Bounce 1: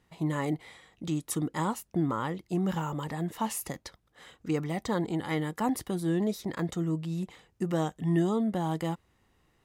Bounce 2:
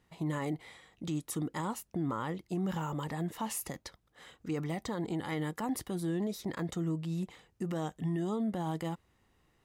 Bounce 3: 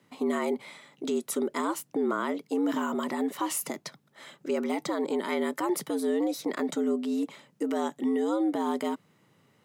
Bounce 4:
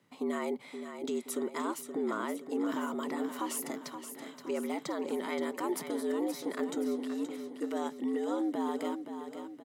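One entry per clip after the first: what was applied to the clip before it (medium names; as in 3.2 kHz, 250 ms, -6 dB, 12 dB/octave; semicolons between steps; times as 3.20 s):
peak limiter -24.5 dBFS, peak gain reduction 8 dB; trim -2 dB
frequency shift +94 Hz; trim +6 dB
feedback delay 524 ms, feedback 51%, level -9 dB; trim -5.5 dB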